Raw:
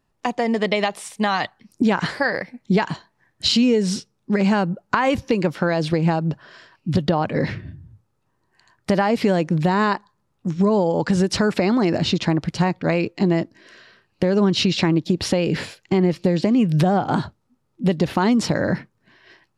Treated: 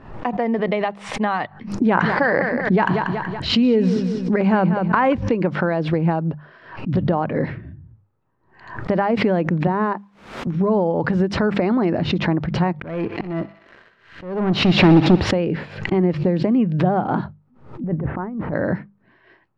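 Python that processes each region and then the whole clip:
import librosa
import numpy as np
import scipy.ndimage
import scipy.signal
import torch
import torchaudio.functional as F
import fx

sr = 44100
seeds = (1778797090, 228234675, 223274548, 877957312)

y = fx.chain(x, sr, fx.echo_feedback(ms=188, feedback_pct=22, wet_db=-13.5),
    fx.env_flatten(amount_pct=70), at=(1.86, 5.13))
y = fx.chain(y, sr, fx.highpass(hz=160.0, slope=24),
    fx.high_shelf(hz=2400.0, db=-11.5),
    fx.quant_dither(seeds[0], bits=10, dither='triangular'), at=(9.67, 10.47))
y = fx.chain(y, sr, fx.leveller(passes=3),
    fx.auto_swell(attack_ms=625.0),
    fx.echo_thinned(ms=62, feedback_pct=83, hz=660.0, wet_db=-14.0), at=(12.75, 15.31))
y = fx.chain(y, sr, fx.over_compress(threshold_db=-23.0, ratio=-0.5),
    fx.lowpass(hz=1800.0, slope=24),
    fx.low_shelf(hz=120.0, db=8.0), at=(17.84, 18.53))
y = scipy.signal.sosfilt(scipy.signal.butter(2, 1800.0, 'lowpass', fs=sr, output='sos'), y)
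y = fx.hum_notches(y, sr, base_hz=50, count=4)
y = fx.pre_swell(y, sr, db_per_s=100.0)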